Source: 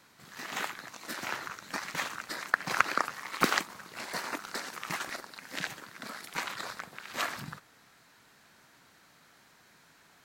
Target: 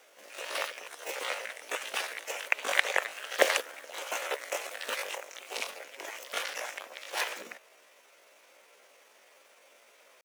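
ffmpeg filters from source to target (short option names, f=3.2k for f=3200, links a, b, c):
-af "asetrate=64194,aresample=44100,atempo=0.686977,highpass=f=550:t=q:w=4.3"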